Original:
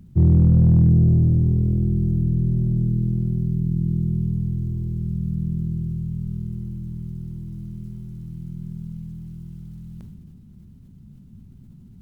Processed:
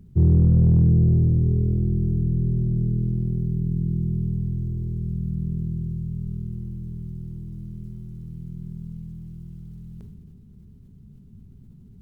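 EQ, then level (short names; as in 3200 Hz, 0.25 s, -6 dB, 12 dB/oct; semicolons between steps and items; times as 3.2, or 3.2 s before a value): low shelf 140 Hz +5.5 dB; bell 420 Hz +12 dB 0.27 oct; -5.0 dB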